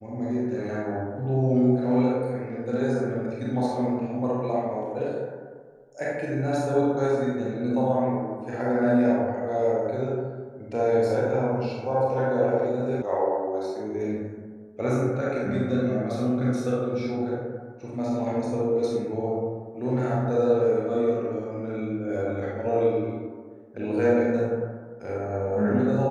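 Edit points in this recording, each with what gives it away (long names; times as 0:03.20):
0:13.02: cut off before it has died away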